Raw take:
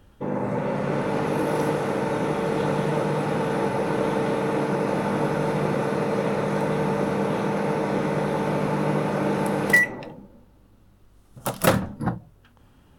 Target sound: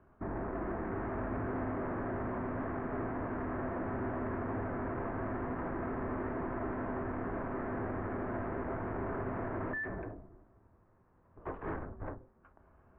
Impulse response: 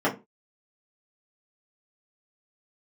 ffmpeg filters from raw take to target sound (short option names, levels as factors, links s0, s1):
-filter_complex "[0:a]aeval=exprs='(tanh(50.1*val(0)+0.55)-tanh(0.55))/50.1':c=same,asplit=2[s0][s1];[1:a]atrim=start_sample=2205[s2];[s1][s2]afir=irnorm=-1:irlink=0,volume=0.0501[s3];[s0][s3]amix=inputs=2:normalize=0,highpass=f=230:t=q:w=0.5412,highpass=f=230:t=q:w=1.307,lowpass=f=2000:t=q:w=0.5176,lowpass=f=2000:t=q:w=0.7071,lowpass=f=2000:t=q:w=1.932,afreqshift=-200,volume=0.891"